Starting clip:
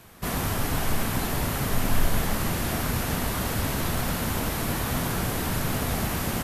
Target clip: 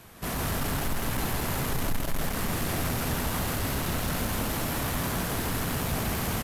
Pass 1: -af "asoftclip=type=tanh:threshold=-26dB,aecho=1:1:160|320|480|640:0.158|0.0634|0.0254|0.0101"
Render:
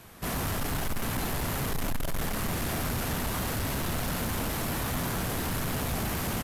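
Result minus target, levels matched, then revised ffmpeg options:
echo-to-direct −12 dB
-af "asoftclip=type=tanh:threshold=-26dB,aecho=1:1:160|320|480|640|800:0.631|0.252|0.101|0.0404|0.0162"

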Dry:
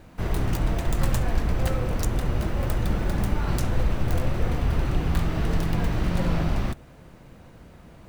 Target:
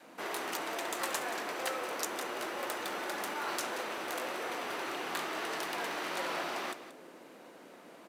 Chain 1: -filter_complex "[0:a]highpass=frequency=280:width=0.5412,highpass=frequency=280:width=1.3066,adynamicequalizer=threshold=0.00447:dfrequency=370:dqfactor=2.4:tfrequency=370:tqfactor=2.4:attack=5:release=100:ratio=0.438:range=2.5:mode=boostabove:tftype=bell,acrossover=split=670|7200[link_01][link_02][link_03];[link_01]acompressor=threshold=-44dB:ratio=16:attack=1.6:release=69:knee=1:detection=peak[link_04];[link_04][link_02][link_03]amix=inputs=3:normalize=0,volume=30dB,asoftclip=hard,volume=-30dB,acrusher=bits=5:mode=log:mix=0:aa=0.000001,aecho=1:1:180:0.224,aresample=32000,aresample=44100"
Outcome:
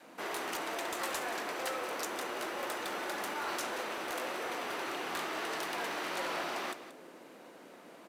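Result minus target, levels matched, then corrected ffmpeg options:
gain into a clipping stage and back: distortion +10 dB
-filter_complex "[0:a]highpass=frequency=280:width=0.5412,highpass=frequency=280:width=1.3066,adynamicequalizer=threshold=0.00447:dfrequency=370:dqfactor=2.4:tfrequency=370:tqfactor=2.4:attack=5:release=100:ratio=0.438:range=2.5:mode=boostabove:tftype=bell,acrossover=split=670|7200[link_01][link_02][link_03];[link_01]acompressor=threshold=-44dB:ratio=16:attack=1.6:release=69:knee=1:detection=peak[link_04];[link_04][link_02][link_03]amix=inputs=3:normalize=0,volume=21dB,asoftclip=hard,volume=-21dB,acrusher=bits=5:mode=log:mix=0:aa=0.000001,aecho=1:1:180:0.224,aresample=32000,aresample=44100"

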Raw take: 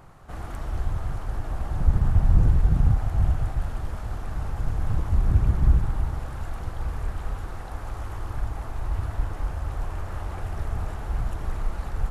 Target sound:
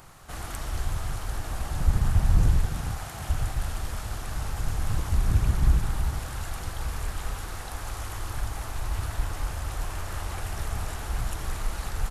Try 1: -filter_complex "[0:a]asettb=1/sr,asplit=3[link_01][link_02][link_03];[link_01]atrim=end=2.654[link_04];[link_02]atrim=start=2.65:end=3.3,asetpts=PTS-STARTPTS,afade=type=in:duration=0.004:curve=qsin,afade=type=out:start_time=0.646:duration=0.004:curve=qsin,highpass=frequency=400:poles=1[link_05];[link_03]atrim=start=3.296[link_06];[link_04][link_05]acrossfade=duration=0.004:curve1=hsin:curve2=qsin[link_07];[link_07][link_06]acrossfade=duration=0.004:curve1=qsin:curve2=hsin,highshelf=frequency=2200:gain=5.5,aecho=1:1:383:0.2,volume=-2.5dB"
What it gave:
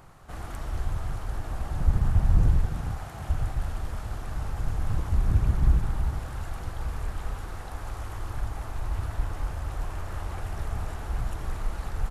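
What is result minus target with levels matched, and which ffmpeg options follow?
4,000 Hz band −7.5 dB
-filter_complex "[0:a]asettb=1/sr,asplit=3[link_01][link_02][link_03];[link_01]atrim=end=2.654[link_04];[link_02]atrim=start=2.65:end=3.3,asetpts=PTS-STARTPTS,afade=type=in:duration=0.004:curve=qsin,afade=type=out:start_time=0.646:duration=0.004:curve=qsin,highpass=frequency=400:poles=1[link_05];[link_03]atrim=start=3.296[link_06];[link_04][link_05]acrossfade=duration=0.004:curve1=hsin:curve2=qsin[link_07];[link_07][link_06]acrossfade=duration=0.004:curve1=qsin:curve2=hsin,highshelf=frequency=2200:gain=16.5,aecho=1:1:383:0.2,volume=-2.5dB"

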